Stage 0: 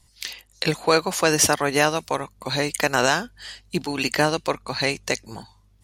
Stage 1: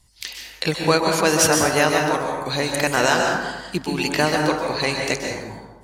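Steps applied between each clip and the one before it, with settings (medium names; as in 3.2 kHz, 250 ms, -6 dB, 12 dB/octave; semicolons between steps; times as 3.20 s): plate-style reverb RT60 1.2 s, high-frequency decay 0.45×, pre-delay 115 ms, DRR 1 dB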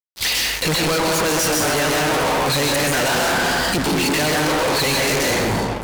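gain riding within 4 dB 0.5 s; fuzz box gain 41 dB, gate -44 dBFS; trim -4.5 dB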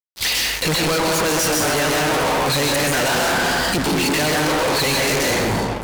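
no audible change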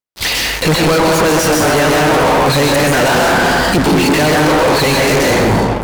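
treble shelf 2.1 kHz -7.5 dB; trim +9 dB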